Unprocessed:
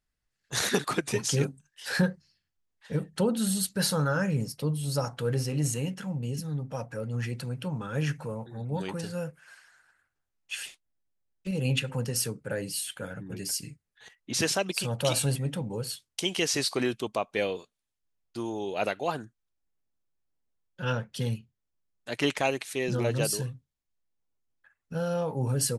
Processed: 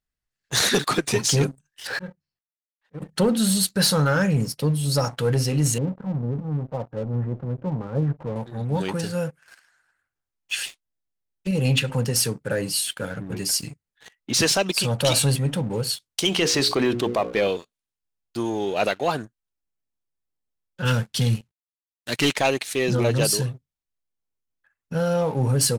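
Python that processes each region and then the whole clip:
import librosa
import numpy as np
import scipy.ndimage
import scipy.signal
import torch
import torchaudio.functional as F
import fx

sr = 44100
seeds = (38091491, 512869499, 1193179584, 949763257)

y = fx.chain(x, sr, fx.law_mismatch(coded='A'),
    fx.lowpass(hz=1500.0, slope=6),
    fx.auto_swell(attack_ms=347.0), at=(1.87, 3.02))
y = fx.chain(y, sr, fx.law_mismatch(coded='A'),
    fx.cheby2_lowpass(hz=5600.0, order=4, stop_db=80), at=(5.78, 8.36))
y = fx.chain(y, sr, fx.high_shelf(hz=3800.0, db=-10.5),
    fx.hum_notches(base_hz=60, count=9),
    fx.env_flatten(amount_pct=50), at=(16.28, 17.48))
y = fx.chain(y, sr, fx.cvsd(bps=64000),
    fx.peak_eq(hz=690.0, db=-8.0, octaves=2.1),
    fx.leveller(passes=1), at=(20.85, 22.3))
y = fx.dynamic_eq(y, sr, hz=4200.0, q=1.8, threshold_db=-45.0, ratio=4.0, max_db=4)
y = fx.leveller(y, sr, passes=2)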